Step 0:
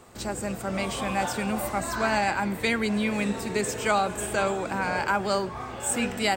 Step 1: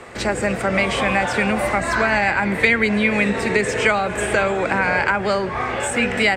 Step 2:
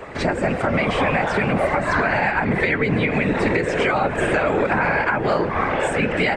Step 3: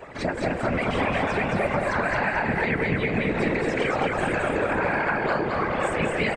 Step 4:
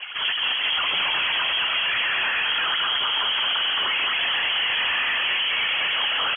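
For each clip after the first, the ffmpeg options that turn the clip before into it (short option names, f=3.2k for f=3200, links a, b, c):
-filter_complex "[0:a]lowpass=f=11k:w=0.5412,lowpass=f=11k:w=1.3066,acrossover=split=170[a][b];[b]acompressor=threshold=-30dB:ratio=6[c];[a][c]amix=inputs=2:normalize=0,equalizer=f=500:t=o:w=1:g=6,equalizer=f=2k:t=o:w=1:g=12,equalizer=f=8k:t=o:w=1:g=-4,volume=8.5dB"
-af "afftfilt=real='hypot(re,im)*cos(2*PI*random(0))':imag='hypot(re,im)*sin(2*PI*random(1))':win_size=512:overlap=0.75,aemphasis=mode=reproduction:type=75fm,alimiter=limit=-18.5dB:level=0:latency=1:release=243,volume=9dB"
-filter_complex "[0:a]afftfilt=real='hypot(re,im)*cos(2*PI*random(0))':imag='hypot(re,im)*sin(2*PI*random(1))':win_size=512:overlap=0.75,asplit=2[a][b];[b]aecho=0:1:219|438|657|876|1095:0.708|0.283|0.113|0.0453|0.0181[c];[a][c]amix=inputs=2:normalize=0,volume=-2.5dB"
-af "asoftclip=type=hard:threshold=-28.5dB,lowpass=f=2.9k:t=q:w=0.5098,lowpass=f=2.9k:t=q:w=0.6013,lowpass=f=2.9k:t=q:w=0.9,lowpass=f=2.9k:t=q:w=2.563,afreqshift=-3400,volume=7dB"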